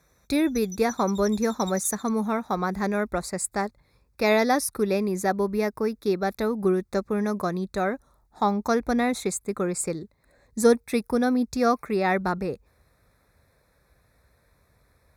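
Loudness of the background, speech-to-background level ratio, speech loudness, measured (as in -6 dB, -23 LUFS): -41.0 LUFS, 15.5 dB, -25.5 LUFS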